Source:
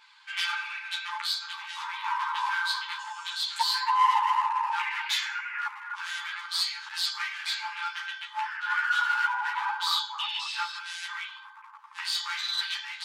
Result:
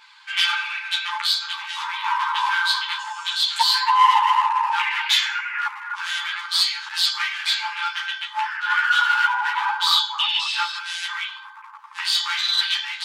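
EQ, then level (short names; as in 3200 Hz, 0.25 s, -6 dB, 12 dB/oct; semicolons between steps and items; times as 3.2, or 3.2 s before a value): dynamic EQ 3200 Hz, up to +5 dB, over -43 dBFS, Q 2.4; +7.0 dB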